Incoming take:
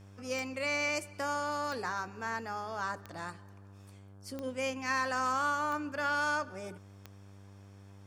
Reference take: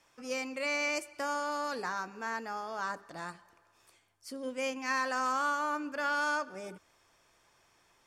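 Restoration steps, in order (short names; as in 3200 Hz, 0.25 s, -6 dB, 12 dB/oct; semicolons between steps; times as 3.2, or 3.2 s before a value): de-click; de-hum 98.7 Hz, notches 17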